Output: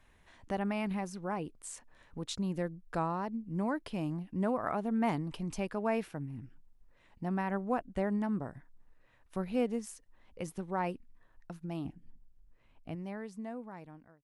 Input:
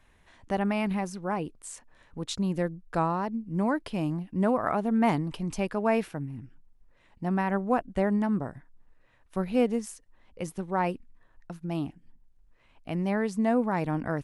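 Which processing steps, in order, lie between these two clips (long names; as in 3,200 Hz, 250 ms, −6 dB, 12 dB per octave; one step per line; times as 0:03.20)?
fade-out on the ending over 3.21 s
0:11.85–0:12.95: low-shelf EQ 490 Hz +7.5 dB
in parallel at −1 dB: downward compressor, threshold −37 dBFS, peak gain reduction 17 dB
on the sum: level −8 dB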